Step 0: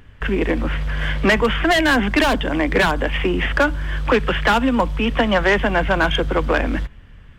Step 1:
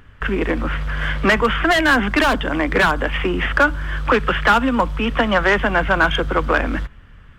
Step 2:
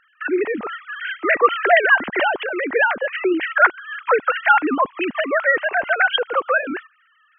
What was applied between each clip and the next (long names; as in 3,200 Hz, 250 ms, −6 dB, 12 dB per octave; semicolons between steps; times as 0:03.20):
parametric band 1,300 Hz +7 dB 0.63 octaves; level −1 dB
three sine waves on the formant tracks; level −1.5 dB